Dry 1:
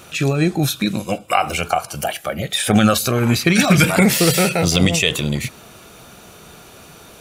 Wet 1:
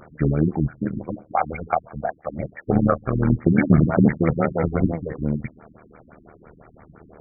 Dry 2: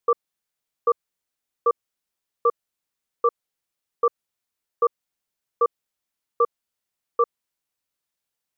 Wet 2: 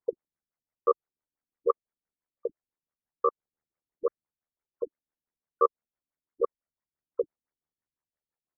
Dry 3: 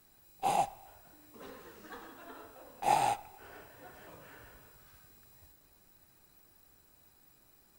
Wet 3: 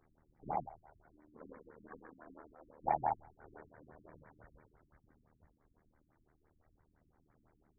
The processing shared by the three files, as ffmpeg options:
-af "aphaser=in_gain=1:out_gain=1:delay=4.4:decay=0.26:speed=0.27:type=sinusoidal,tremolo=f=77:d=0.824,afftfilt=real='re*lt(b*sr/1024,320*pow(2400/320,0.5+0.5*sin(2*PI*5.9*pts/sr)))':imag='im*lt(b*sr/1024,320*pow(2400/320,0.5+0.5*sin(2*PI*5.9*pts/sr)))':win_size=1024:overlap=0.75"

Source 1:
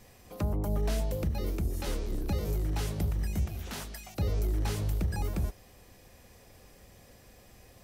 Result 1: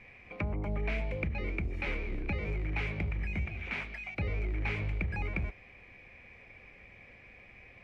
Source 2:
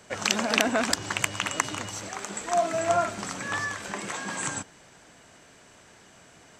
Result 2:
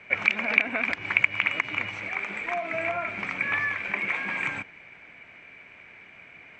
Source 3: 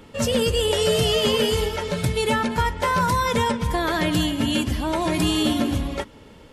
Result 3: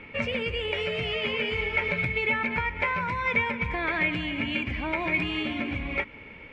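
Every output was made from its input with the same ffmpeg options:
-af "acompressor=threshold=-25dB:ratio=10,lowpass=f=2.3k:t=q:w=14,volume=-3dB"

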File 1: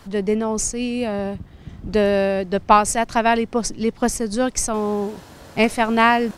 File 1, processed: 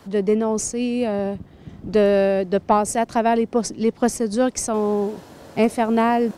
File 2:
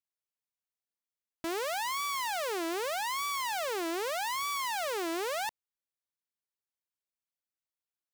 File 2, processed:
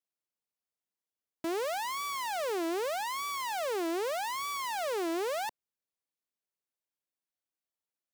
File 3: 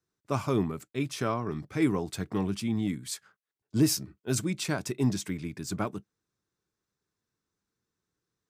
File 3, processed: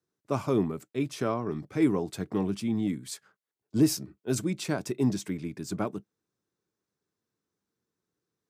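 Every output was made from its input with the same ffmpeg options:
-filter_complex "[0:a]highpass=f=210:p=1,acrossover=split=730|6800[a][b][c];[a]acontrast=79[d];[b]alimiter=limit=-15.5dB:level=0:latency=1:release=305[e];[d][e][c]amix=inputs=3:normalize=0,volume=-3dB"

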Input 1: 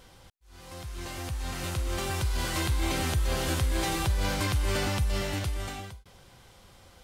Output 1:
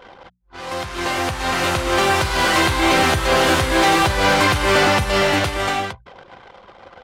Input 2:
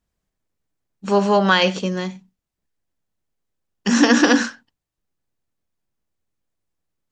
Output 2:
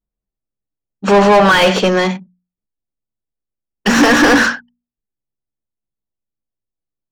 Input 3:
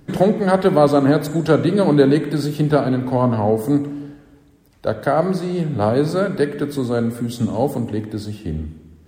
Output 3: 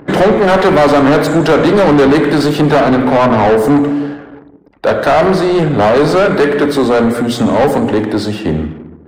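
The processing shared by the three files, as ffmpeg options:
-filter_complex "[0:a]asplit=2[a][b];[b]highpass=f=720:p=1,volume=30dB,asoftclip=type=tanh:threshold=-1dB[c];[a][c]amix=inputs=2:normalize=0,lowpass=f=1.7k:p=1,volume=-6dB,anlmdn=3.98,bandreject=f=60:t=h:w=6,bandreject=f=120:t=h:w=6,bandreject=f=180:t=h:w=6,bandreject=f=240:t=h:w=6"

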